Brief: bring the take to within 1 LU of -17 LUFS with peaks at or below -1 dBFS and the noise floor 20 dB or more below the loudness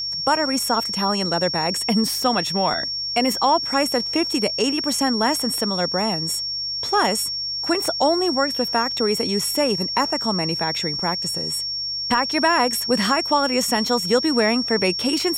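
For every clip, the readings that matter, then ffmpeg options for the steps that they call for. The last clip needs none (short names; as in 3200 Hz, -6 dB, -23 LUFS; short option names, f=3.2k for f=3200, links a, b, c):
hum 50 Hz; harmonics up to 150 Hz; hum level -49 dBFS; steady tone 5500 Hz; tone level -24 dBFS; loudness -20.0 LUFS; peak -6.5 dBFS; loudness target -17.0 LUFS
-> -af "bandreject=f=50:t=h:w=4,bandreject=f=100:t=h:w=4,bandreject=f=150:t=h:w=4"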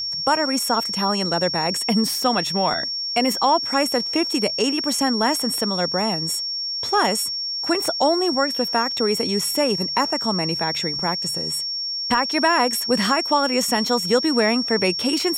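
hum none; steady tone 5500 Hz; tone level -24 dBFS
-> -af "bandreject=f=5.5k:w=30"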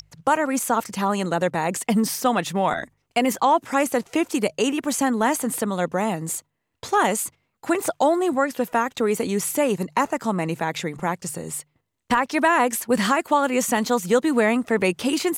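steady tone none; loudness -22.5 LUFS; peak -7.5 dBFS; loudness target -17.0 LUFS
-> -af "volume=5.5dB"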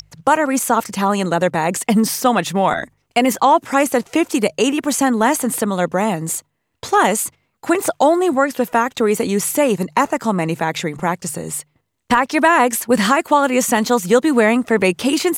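loudness -17.0 LUFS; peak -2.0 dBFS; noise floor -68 dBFS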